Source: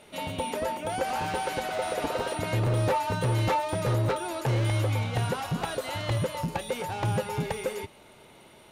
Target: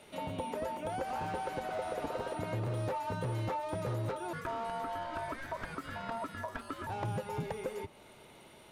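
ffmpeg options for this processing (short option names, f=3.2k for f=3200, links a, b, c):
-filter_complex "[0:a]acrossover=split=92|1600[a][b][c];[a]acompressor=threshold=-48dB:ratio=4[d];[b]acompressor=threshold=-31dB:ratio=4[e];[c]acompressor=threshold=-51dB:ratio=4[f];[d][e][f]amix=inputs=3:normalize=0,asettb=1/sr,asplit=3[g][h][i];[g]atrim=end=4.334[j];[h]atrim=start=4.33:end=6.87,asetpts=PTS-STARTPTS,afade=t=in:d=0.004:c=qsin,afade=t=out:st=2.536:d=0.004:c=qsin,aeval=exprs='val(0)*sin(2*PI*800*n/s)':c=same[k];[i]atrim=start=6.866[l];[j][k]acrossfade=d=0.004:c1=hsin:c2=qsin[m];[m][l]acrossfade=d=0.004:c1=qsin:c2=hsin,volume=-3dB"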